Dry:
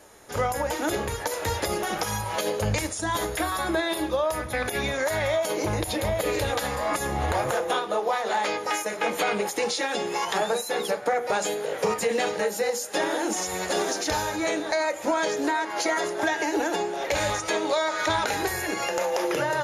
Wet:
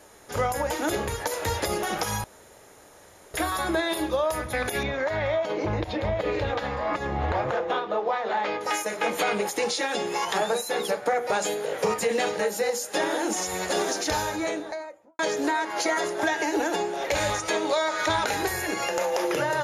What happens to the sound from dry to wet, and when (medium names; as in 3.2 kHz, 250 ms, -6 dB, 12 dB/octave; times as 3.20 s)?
2.24–3.34 s: room tone
4.83–8.61 s: distance through air 220 m
14.21–15.19 s: studio fade out